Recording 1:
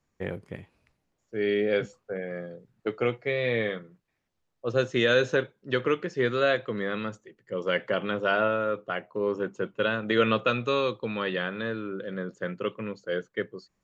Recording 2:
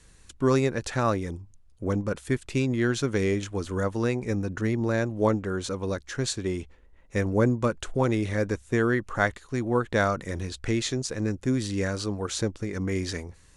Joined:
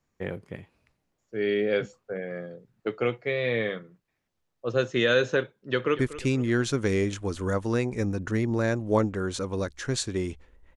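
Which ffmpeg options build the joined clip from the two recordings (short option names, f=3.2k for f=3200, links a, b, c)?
-filter_complex "[0:a]apad=whole_dur=10.76,atrim=end=10.76,atrim=end=5.992[a];[1:a]atrim=start=2.288:end=7.06[b];[a][b]acrossfade=d=0.004:c1=hsin:c2=hsin,asplit=2[c][d];[d]afade=t=in:st=5.61:d=0.01,afade=t=out:st=5.99:d=0.01,aecho=0:1:240|480|720|960|1200:0.16788|0.0839402|0.0419701|0.0209851|0.0104925[e];[c][e]amix=inputs=2:normalize=0"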